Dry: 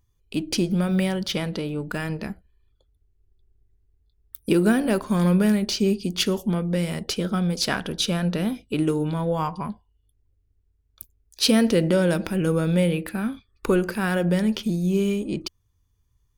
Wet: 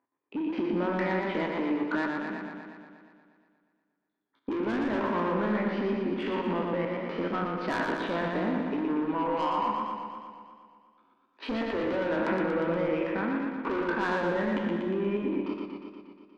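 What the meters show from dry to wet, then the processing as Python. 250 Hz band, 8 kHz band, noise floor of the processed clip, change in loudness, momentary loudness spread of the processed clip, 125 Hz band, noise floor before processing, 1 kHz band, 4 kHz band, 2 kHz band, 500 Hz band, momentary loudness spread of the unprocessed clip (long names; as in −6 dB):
−7.0 dB, below −25 dB, −77 dBFS, −6.5 dB, 12 LU, −13.5 dB, −68 dBFS, +2.5 dB, −15.0 dB, −1.5 dB, −4.0 dB, 11 LU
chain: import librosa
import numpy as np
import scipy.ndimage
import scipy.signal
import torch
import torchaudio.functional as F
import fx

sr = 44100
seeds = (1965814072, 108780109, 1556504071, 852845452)

y = fx.spec_trails(x, sr, decay_s=0.66)
y = fx.cabinet(y, sr, low_hz=250.0, low_slope=24, high_hz=2100.0, hz=(280.0, 440.0, 970.0, 2000.0), db=(7, -3, 9, 3))
y = 10.0 ** (-20.5 / 20.0) * np.tanh(y / 10.0 ** (-20.5 / 20.0))
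y = fx.level_steps(y, sr, step_db=10)
y = fx.echo_warbled(y, sr, ms=119, feedback_pct=68, rate_hz=2.8, cents=73, wet_db=-4.0)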